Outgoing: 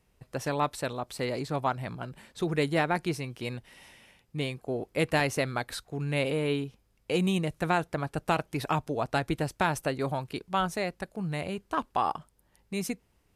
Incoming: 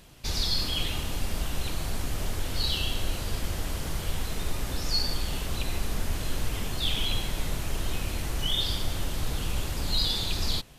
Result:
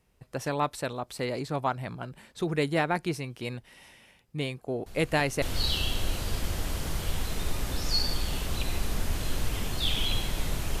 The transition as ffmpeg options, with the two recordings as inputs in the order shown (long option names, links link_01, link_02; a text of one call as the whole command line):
ffmpeg -i cue0.wav -i cue1.wav -filter_complex "[1:a]asplit=2[link_01][link_02];[0:a]apad=whole_dur=10.8,atrim=end=10.8,atrim=end=5.422[link_03];[link_02]atrim=start=2.418:end=7.8[link_04];[link_01]atrim=start=1.86:end=2.42,asetpts=PTS-STARTPTS,volume=-16dB,afade=type=in:duration=0.004:curve=hsin,afade=type=out:start_time=0.556:duration=0.004:curve=hsin,adelay=4860[link_05];[link_03][link_04]acrossfade=duration=0.004:curve1=hsin:curve2=hsin[link_06];[link_06][link_05]amix=inputs=2:normalize=0" out.wav